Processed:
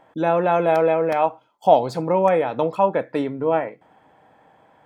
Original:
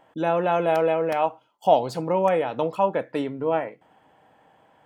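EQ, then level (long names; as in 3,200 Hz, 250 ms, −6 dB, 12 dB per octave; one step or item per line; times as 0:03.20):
high-shelf EQ 5,700 Hz −6 dB
notch filter 2,900 Hz, Q 8.5
+3.5 dB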